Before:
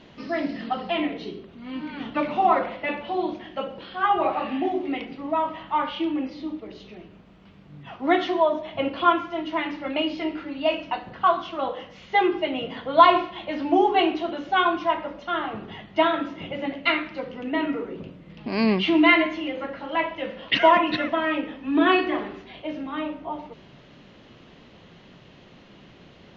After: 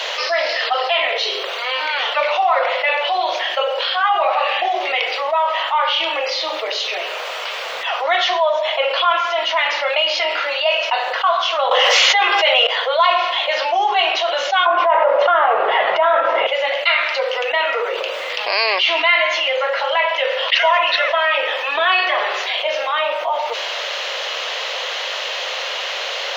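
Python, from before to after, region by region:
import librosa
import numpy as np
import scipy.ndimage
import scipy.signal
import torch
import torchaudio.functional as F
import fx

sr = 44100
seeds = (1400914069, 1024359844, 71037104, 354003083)

y = fx.chain(x, sr, fx.highpass(hz=470.0, slope=12),
    fx.env_flatten(amount_pct=100), at=(11.71, 12.67))
y = fx.chain(y, sr, fx.lowpass(hz=1400.0, slope=12),
    fx.peak_eq(hz=140.0, db=9.5, octaves=2.6),
    fx.env_flatten(amount_pct=100), at=(14.66, 16.47))
y = scipy.signal.sosfilt(scipy.signal.ellip(4, 1.0, 50, 510.0, 'highpass', fs=sr, output='sos'), y)
y = fx.high_shelf(y, sr, hz=2700.0, db=11.5)
y = fx.env_flatten(y, sr, amount_pct=70)
y = y * 10.0 ** (-4.0 / 20.0)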